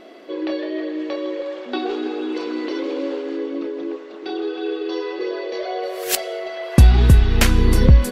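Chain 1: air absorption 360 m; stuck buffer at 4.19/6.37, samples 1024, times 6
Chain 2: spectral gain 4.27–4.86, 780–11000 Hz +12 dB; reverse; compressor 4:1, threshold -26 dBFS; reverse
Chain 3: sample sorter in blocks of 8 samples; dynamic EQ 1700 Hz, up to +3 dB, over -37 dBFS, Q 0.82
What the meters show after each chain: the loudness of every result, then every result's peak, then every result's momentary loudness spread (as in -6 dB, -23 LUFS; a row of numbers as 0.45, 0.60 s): -21.5, -29.5, -20.5 LUFS; -2.5, -10.5, -1.0 dBFS; 15, 3, 13 LU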